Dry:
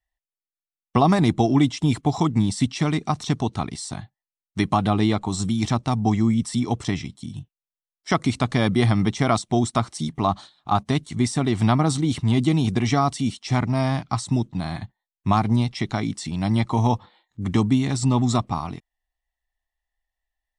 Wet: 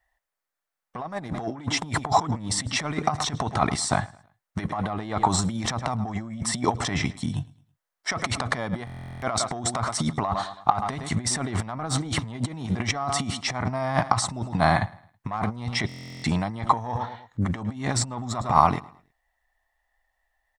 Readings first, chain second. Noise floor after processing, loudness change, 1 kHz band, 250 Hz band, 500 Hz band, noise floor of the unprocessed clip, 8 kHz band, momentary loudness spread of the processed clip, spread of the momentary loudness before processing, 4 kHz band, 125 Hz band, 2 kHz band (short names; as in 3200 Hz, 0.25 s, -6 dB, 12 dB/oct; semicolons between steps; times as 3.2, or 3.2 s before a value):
under -85 dBFS, -4.0 dB, +0.5 dB, -9.0 dB, -4.0 dB, under -85 dBFS, +4.0 dB, 9 LU, 11 LU, +0.5 dB, -7.0 dB, +1.5 dB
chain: soft clip -11.5 dBFS, distortion -19 dB; feedback echo 0.108 s, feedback 36%, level -22 dB; negative-ratio compressor -27 dBFS, ratio -0.5; band shelf 1000 Hz +9.5 dB 2.3 oct; stuck buffer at 8.85/15.87, samples 1024, times 15